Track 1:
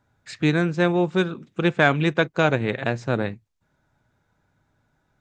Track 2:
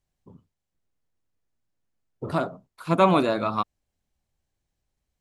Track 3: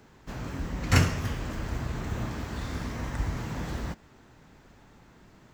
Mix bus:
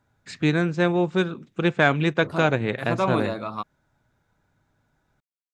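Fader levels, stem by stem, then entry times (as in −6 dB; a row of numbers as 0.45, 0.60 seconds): −1.0 dB, −5.5 dB, muted; 0.00 s, 0.00 s, muted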